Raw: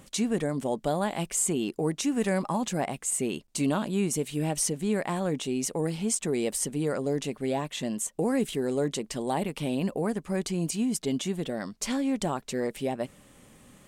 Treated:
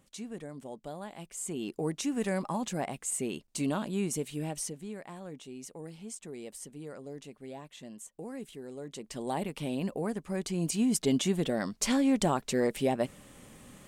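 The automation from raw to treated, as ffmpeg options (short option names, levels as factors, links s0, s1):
-af "volume=4.22,afade=t=in:st=1.35:d=0.42:silence=0.334965,afade=t=out:st=4.2:d=0.75:silence=0.298538,afade=t=in:st=8.86:d=0.41:silence=0.298538,afade=t=in:st=10.43:d=0.61:silence=0.473151"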